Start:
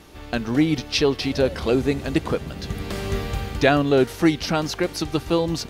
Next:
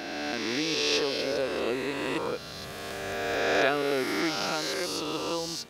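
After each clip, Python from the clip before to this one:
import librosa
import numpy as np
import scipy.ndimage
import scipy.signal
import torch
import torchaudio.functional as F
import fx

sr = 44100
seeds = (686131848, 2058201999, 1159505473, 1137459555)

y = fx.spec_swells(x, sr, rise_s=2.73)
y = fx.highpass(y, sr, hz=540.0, slope=6)
y = y * librosa.db_to_amplitude(-9.0)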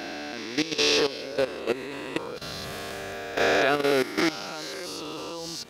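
y = fx.level_steps(x, sr, step_db=14)
y = y * librosa.db_to_amplitude(6.5)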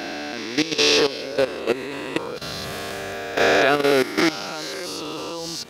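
y = scipy.signal.sosfilt(scipy.signal.butter(2, 53.0, 'highpass', fs=sr, output='sos'), x)
y = y * librosa.db_to_amplitude(5.0)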